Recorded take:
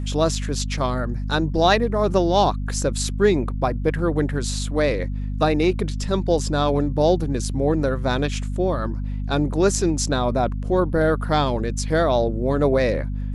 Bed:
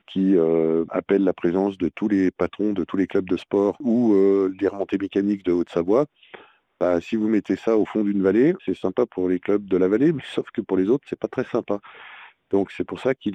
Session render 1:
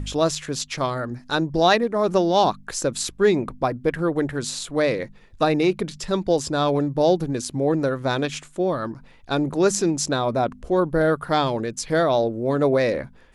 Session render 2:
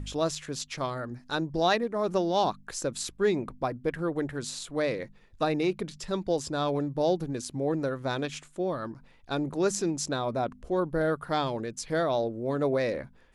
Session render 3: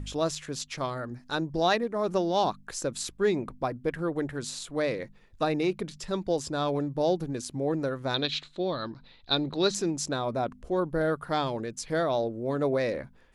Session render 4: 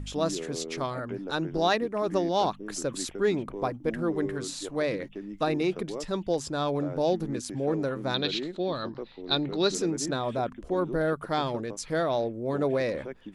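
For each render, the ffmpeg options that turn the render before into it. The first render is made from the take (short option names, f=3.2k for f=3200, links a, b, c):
-af "bandreject=f=50:t=h:w=4,bandreject=f=100:t=h:w=4,bandreject=f=150:t=h:w=4,bandreject=f=200:t=h:w=4,bandreject=f=250:t=h:w=4"
-af "volume=-7.5dB"
-filter_complex "[0:a]asettb=1/sr,asplit=3[a][b][c];[a]atrim=end=8.144[d];[b]atrim=start=8.14:end=9.75,asetpts=PTS-STARTPTS,afade=t=in:d=0.004:c=qsin,afade=t=out:st=1.606:d=0.004:c=qsin,lowpass=f=4k:t=q:w=9.2[e];[c]atrim=start=9.746[f];[d][e]acrossfade=d=0.004:c1=hsin:c2=qsin[g];[g][f]acrossfade=d=0.004:c1=qsin:c2=hsin"
-filter_complex "[1:a]volume=-18dB[a];[0:a][a]amix=inputs=2:normalize=0"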